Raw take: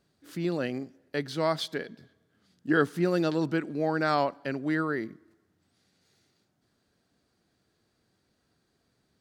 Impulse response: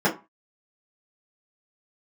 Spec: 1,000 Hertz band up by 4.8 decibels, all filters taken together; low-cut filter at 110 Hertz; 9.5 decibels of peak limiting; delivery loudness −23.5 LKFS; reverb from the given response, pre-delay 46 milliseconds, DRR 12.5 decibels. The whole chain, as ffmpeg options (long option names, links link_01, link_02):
-filter_complex "[0:a]highpass=110,equalizer=frequency=1000:width_type=o:gain=6.5,alimiter=limit=-19dB:level=0:latency=1,asplit=2[link_01][link_02];[1:a]atrim=start_sample=2205,adelay=46[link_03];[link_02][link_03]afir=irnorm=-1:irlink=0,volume=-29dB[link_04];[link_01][link_04]amix=inputs=2:normalize=0,volume=7.5dB"